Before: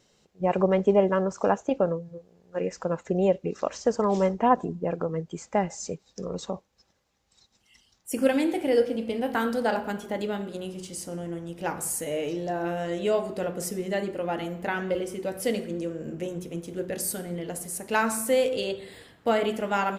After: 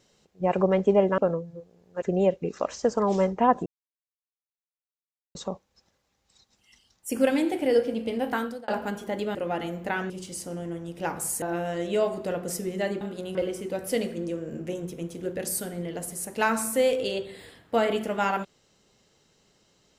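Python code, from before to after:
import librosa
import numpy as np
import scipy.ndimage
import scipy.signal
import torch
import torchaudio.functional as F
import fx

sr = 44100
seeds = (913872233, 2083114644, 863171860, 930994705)

y = fx.edit(x, sr, fx.cut(start_s=1.18, length_s=0.58),
    fx.cut(start_s=2.6, length_s=0.44),
    fx.silence(start_s=4.68, length_s=1.69),
    fx.fade_out_span(start_s=9.32, length_s=0.38),
    fx.swap(start_s=10.37, length_s=0.34, other_s=14.13, other_length_s=0.75),
    fx.cut(start_s=12.03, length_s=0.51), tone=tone)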